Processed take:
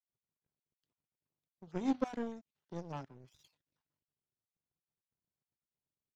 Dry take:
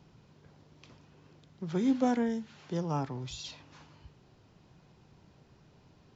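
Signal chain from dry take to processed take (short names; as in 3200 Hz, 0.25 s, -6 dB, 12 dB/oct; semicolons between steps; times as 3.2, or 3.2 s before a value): random spectral dropouts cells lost 30%; power-law curve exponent 2; gain -1 dB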